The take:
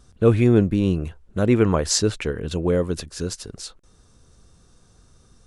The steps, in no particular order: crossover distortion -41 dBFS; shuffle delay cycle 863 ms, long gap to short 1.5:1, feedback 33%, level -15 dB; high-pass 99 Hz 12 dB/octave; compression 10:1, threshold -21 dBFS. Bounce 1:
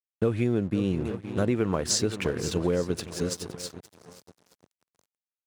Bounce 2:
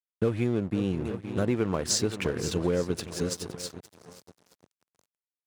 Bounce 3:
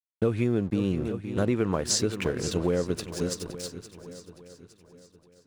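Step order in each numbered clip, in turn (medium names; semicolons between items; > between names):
shuffle delay > crossover distortion > high-pass > compression; shuffle delay > compression > crossover distortion > high-pass; high-pass > crossover distortion > shuffle delay > compression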